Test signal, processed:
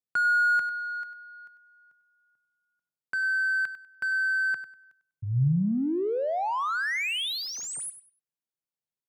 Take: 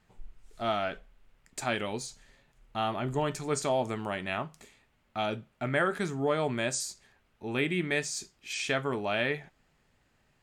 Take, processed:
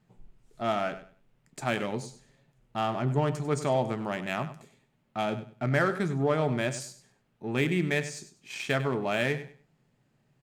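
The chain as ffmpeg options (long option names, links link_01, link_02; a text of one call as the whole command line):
ffmpeg -i in.wav -filter_complex "[0:a]asplit=2[link_01][link_02];[link_02]adynamicsmooth=sensitivity=6:basefreq=920,volume=1.5dB[link_03];[link_01][link_03]amix=inputs=2:normalize=0,lowshelf=frequency=100:width_type=q:width=3:gain=-8.5,aecho=1:1:98|196|294:0.224|0.0515|0.0118,volume=-5.5dB" out.wav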